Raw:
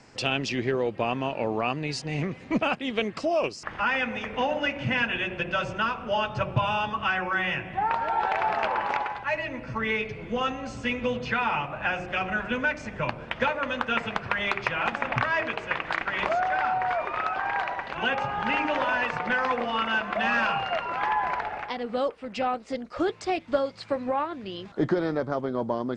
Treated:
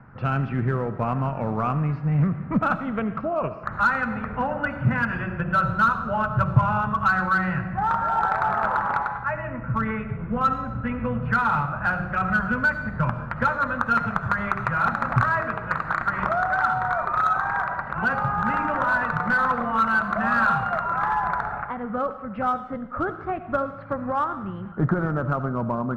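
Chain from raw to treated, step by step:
transistor ladder low-pass 1,500 Hz, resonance 65%
low shelf with overshoot 240 Hz +10.5 dB, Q 1.5
in parallel at −7.5 dB: hard clipping −28 dBFS, distortion −11 dB
on the sum: comb and all-pass reverb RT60 0.91 s, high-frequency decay 0.95×, pre-delay 30 ms, DRR 11 dB
level +6.5 dB

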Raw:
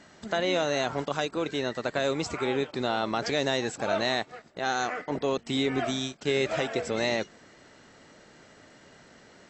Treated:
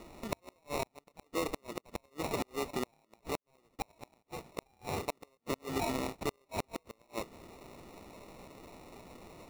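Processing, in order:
high-pass filter 450 Hz 6 dB per octave
downward compressor 8 to 1, threshold −33 dBFS, peak gain reduction 10 dB
0:03.36–0:03.79: gate with flip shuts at −36 dBFS, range −33 dB
sample-rate reduction 1,600 Hz, jitter 0%
gate with flip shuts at −27 dBFS, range −36 dB
level +4 dB

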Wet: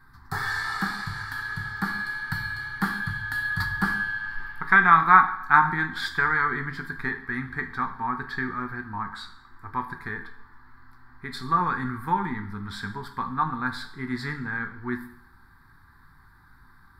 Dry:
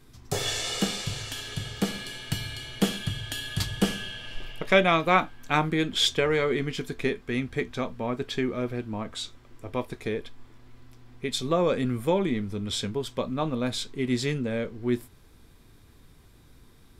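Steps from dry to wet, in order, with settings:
drawn EQ curve 170 Hz 0 dB, 400 Hz −9 dB, 580 Hz −26 dB, 830 Hz +9 dB, 1,700 Hz +15 dB, 2,800 Hz −20 dB, 4,400 Hz 0 dB, 6,300 Hz −17 dB, 15,000 Hz 0 dB
dense smooth reverb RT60 0.68 s, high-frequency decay 0.95×, DRR 7 dB
level −2.5 dB

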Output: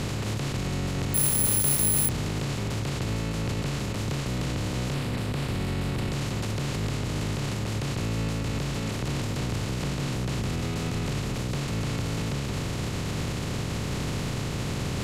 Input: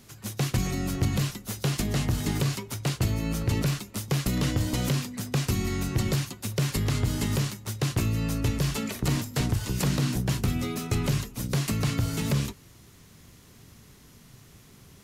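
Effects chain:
compressor on every frequency bin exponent 0.2
0:04.94–0:06.12: parametric band 6,300 Hz −7.5 dB 0.54 octaves
brickwall limiter −19 dBFS, peak gain reduction 11.5 dB
high-frequency loss of the air 55 metres
0:01.14–0:02.09: bad sample-rate conversion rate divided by 4×, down none, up zero stuff
level −1.5 dB

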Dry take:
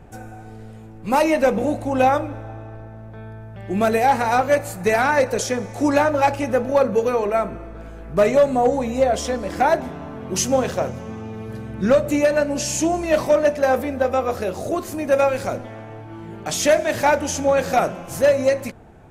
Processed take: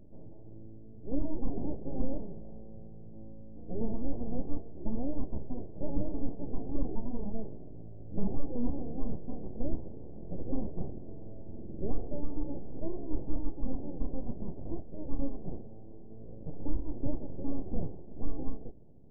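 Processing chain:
full-wave rectification
Gaussian smoothing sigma 18 samples
level −5 dB

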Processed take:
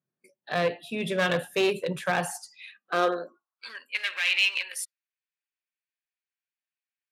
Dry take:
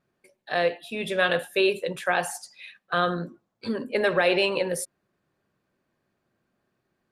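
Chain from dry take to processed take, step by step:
noise reduction from a noise print of the clip's start 16 dB
asymmetric clip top −22.5 dBFS
high-pass filter sweep 140 Hz → 2,400 Hz, 0:02.60–0:03.86
level −1.5 dB

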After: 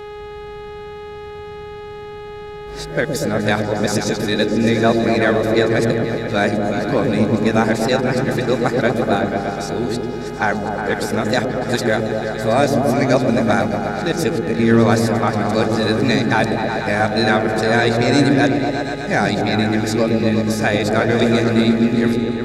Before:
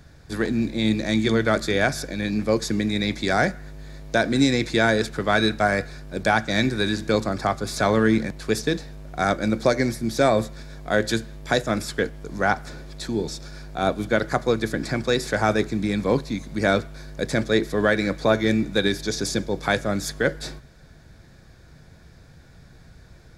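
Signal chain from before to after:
played backwards from end to start
on a send: echo whose low-pass opens from repeat to repeat 126 ms, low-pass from 400 Hz, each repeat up 1 octave, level 0 dB
on the sum: hum with harmonics 400 Hz, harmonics 10, −35 dBFS −8 dB per octave
wrong playback speed 24 fps film run at 25 fps
level +2.5 dB

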